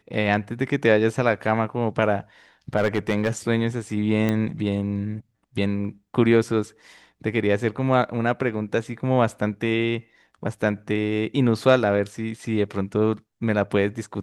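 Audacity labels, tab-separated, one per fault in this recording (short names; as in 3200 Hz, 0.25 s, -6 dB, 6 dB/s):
2.770000	3.300000	clipped -15 dBFS
4.290000	4.290000	pop -11 dBFS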